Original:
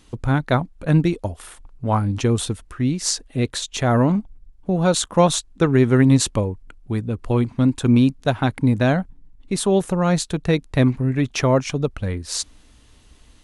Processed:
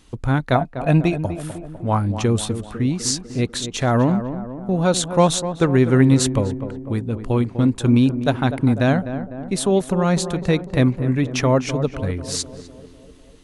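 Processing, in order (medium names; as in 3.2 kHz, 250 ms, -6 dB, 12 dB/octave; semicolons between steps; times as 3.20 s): 0.55–1.22 s: small resonant body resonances 690/2500 Hz, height 16 dB; tape echo 249 ms, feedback 69%, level -8.5 dB, low-pass 1.1 kHz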